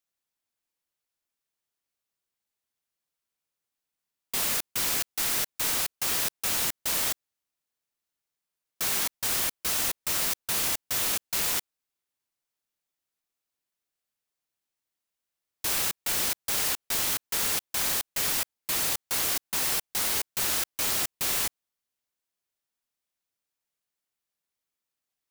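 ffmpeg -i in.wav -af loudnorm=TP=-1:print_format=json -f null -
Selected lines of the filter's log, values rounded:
"input_i" : "-26.3",
"input_tp" : "-13.0",
"input_lra" : "6.2",
"input_thresh" : "-36.3",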